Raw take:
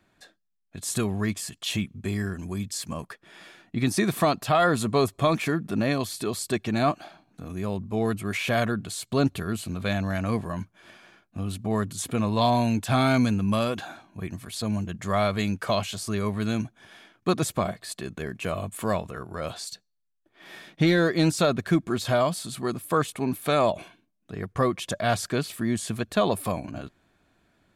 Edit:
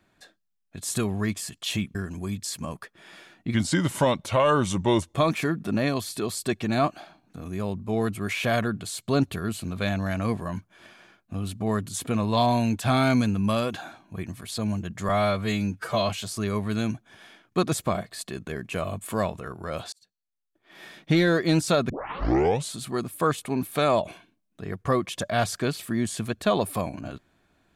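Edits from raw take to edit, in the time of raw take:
0:01.95–0:02.23: remove
0:03.82–0:05.18: play speed 85%
0:15.13–0:15.80: time-stretch 1.5×
0:19.63–0:20.67: fade in
0:21.60: tape start 0.85 s

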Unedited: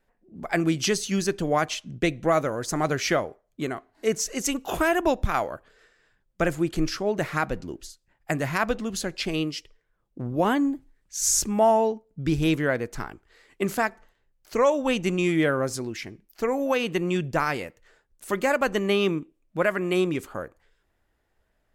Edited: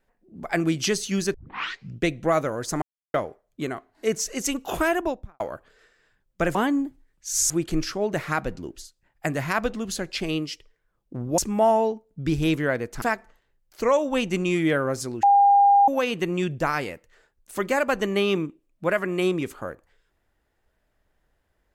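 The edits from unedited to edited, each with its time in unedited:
0:01.34: tape start 0.65 s
0:02.82–0:03.14: silence
0:04.86–0:05.40: fade out and dull
0:10.43–0:11.38: move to 0:06.55
0:13.02–0:13.75: remove
0:15.96–0:16.61: beep over 804 Hz −12.5 dBFS

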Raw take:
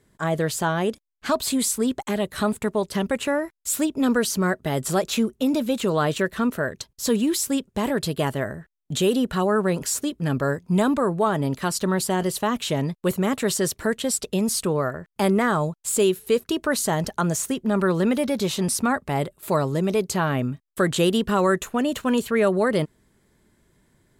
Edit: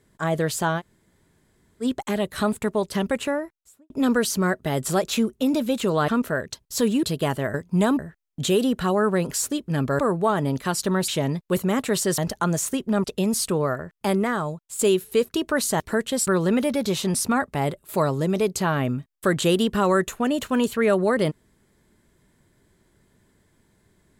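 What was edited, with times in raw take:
0:00.79–0:01.83: fill with room tone, crossfade 0.06 s
0:03.12–0:03.90: fade out and dull
0:06.08–0:06.36: remove
0:07.31–0:08.00: remove
0:10.51–0:10.96: move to 0:08.51
0:12.05–0:12.62: remove
0:13.72–0:14.19: swap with 0:16.95–0:17.81
0:14.99–0:15.94: fade out, to −9.5 dB

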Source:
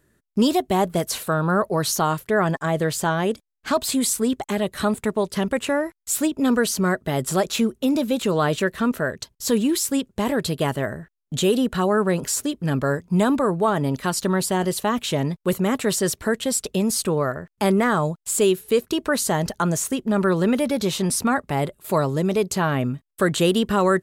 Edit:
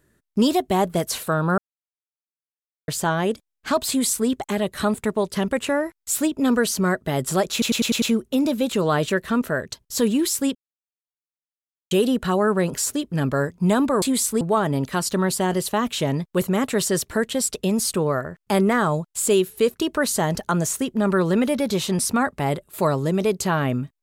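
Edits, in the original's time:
0:01.58–0:02.88: silence
0:03.89–0:04.28: duplicate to 0:13.52
0:07.52: stutter 0.10 s, 6 plays
0:10.05–0:11.41: silence

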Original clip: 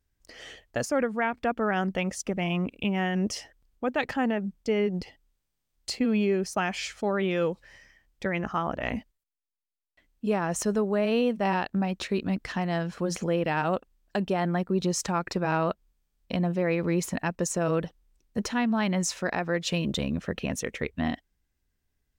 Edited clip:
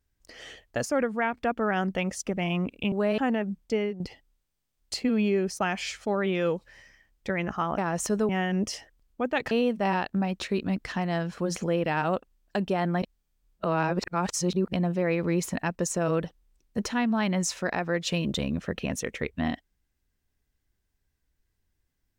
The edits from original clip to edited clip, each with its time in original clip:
0:02.92–0:04.14: swap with 0:10.85–0:11.11
0:04.69–0:04.96: fade out, to −12.5 dB
0:08.74–0:10.34: remove
0:14.62–0:16.33: reverse

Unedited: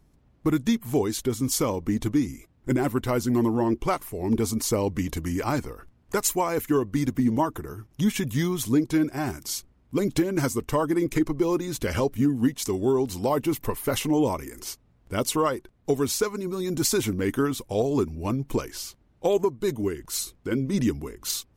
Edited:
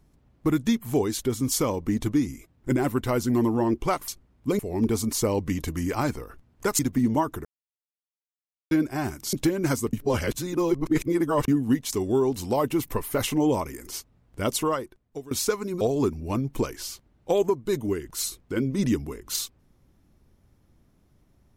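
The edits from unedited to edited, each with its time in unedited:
0:06.28–0:07.01: remove
0:07.67–0:08.93: silence
0:09.55–0:10.06: move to 0:04.08
0:10.66–0:12.21: reverse
0:15.24–0:16.04: fade out, to −21 dB
0:16.54–0:17.76: remove

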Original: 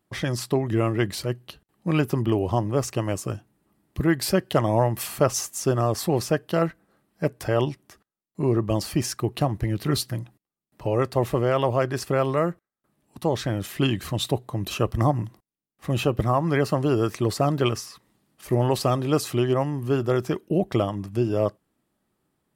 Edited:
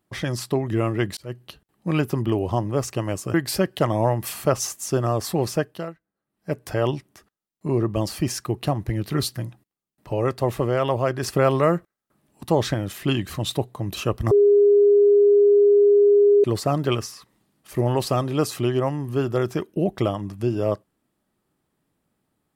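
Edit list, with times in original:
0:01.17–0:01.42: fade in
0:03.34–0:04.08: remove
0:06.32–0:07.35: duck −20.5 dB, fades 0.36 s
0:11.97–0:13.48: clip gain +4 dB
0:15.05–0:17.18: beep over 408 Hz −11.5 dBFS

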